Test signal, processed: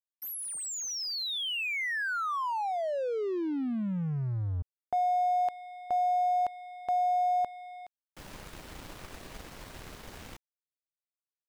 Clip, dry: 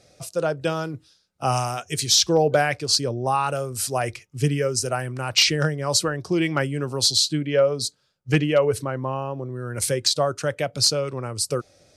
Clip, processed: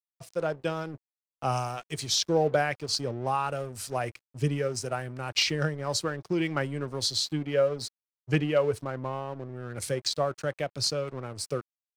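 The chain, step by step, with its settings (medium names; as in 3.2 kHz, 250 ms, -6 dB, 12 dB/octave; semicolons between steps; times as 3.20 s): crossover distortion -40 dBFS; treble shelf 5.4 kHz -8 dB; trim -5 dB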